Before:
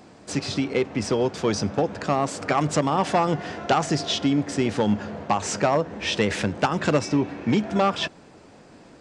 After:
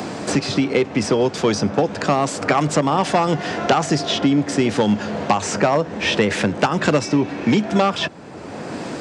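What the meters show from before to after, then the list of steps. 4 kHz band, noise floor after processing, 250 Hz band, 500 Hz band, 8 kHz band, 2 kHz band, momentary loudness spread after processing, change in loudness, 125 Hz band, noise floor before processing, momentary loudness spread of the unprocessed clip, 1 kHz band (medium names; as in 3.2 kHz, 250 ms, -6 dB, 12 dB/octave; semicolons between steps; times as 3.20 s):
+4.5 dB, -34 dBFS, +5.0 dB, +5.0 dB, +4.5 dB, +6.0 dB, 5 LU, +5.0 dB, +4.0 dB, -50 dBFS, 4 LU, +4.0 dB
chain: high-pass 98 Hz; three bands compressed up and down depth 70%; trim +4.5 dB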